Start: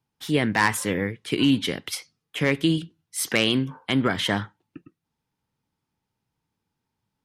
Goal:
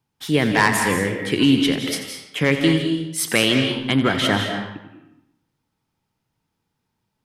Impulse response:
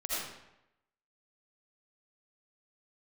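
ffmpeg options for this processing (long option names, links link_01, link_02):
-filter_complex "[0:a]asplit=2[link_01][link_02];[1:a]atrim=start_sample=2205,adelay=87[link_03];[link_02][link_03]afir=irnorm=-1:irlink=0,volume=-9dB[link_04];[link_01][link_04]amix=inputs=2:normalize=0,volume=3.5dB"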